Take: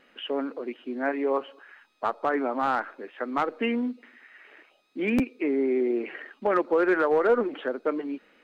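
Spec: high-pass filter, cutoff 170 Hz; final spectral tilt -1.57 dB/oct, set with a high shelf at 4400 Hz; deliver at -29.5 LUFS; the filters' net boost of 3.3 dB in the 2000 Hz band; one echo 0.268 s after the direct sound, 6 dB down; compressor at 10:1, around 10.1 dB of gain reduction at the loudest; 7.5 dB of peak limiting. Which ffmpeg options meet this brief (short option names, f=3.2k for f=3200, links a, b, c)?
-af "highpass=170,equalizer=f=2k:t=o:g=4,highshelf=f=4.4k:g=3.5,acompressor=threshold=-28dB:ratio=10,alimiter=level_in=0.5dB:limit=-24dB:level=0:latency=1,volume=-0.5dB,aecho=1:1:268:0.501,volume=5dB"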